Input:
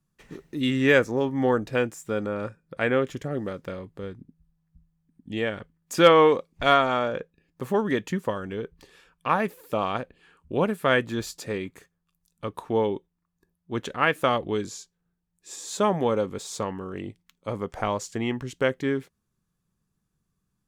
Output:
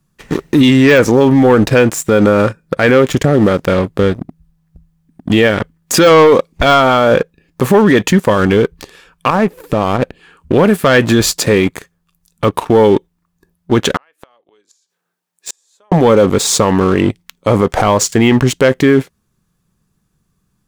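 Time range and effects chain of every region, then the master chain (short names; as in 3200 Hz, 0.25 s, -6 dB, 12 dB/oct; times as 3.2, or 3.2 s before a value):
9.3–10.02 compressor 2:1, threshold -45 dBFS + tilt -2.5 dB/oct
13.96–15.92 HPF 510 Hz + compressor 12:1, threshold -25 dBFS + flipped gate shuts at -30 dBFS, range -34 dB
whole clip: de-esser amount 65%; sample leveller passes 2; maximiser +18 dB; gain -1 dB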